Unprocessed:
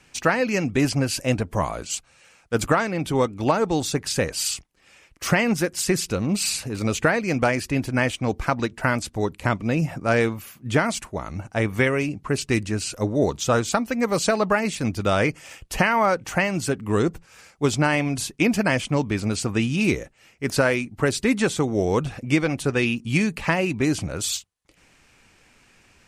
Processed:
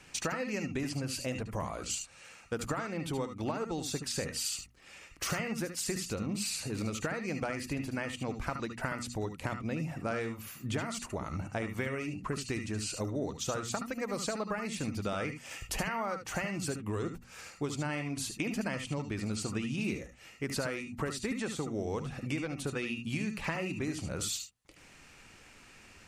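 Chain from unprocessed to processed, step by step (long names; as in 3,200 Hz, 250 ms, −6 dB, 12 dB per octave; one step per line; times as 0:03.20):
mains-hum notches 60/120/180/240 Hz
downward compressor 5 to 1, threshold −34 dBFS, peak gain reduction 17.5 dB
on a send: convolution reverb, pre-delay 71 ms, DRR 6 dB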